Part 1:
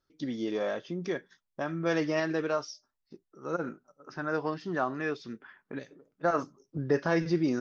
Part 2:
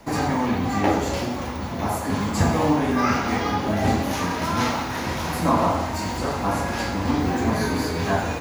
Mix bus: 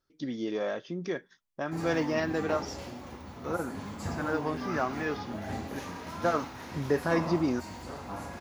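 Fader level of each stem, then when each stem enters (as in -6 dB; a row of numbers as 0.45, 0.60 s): -0.5, -15.5 dB; 0.00, 1.65 s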